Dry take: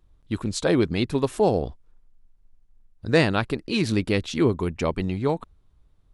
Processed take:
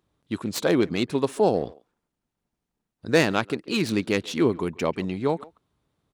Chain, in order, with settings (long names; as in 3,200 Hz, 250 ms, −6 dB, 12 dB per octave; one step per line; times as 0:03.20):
stylus tracing distortion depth 0.063 ms
high-pass filter 160 Hz 12 dB per octave
far-end echo of a speakerphone 140 ms, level −21 dB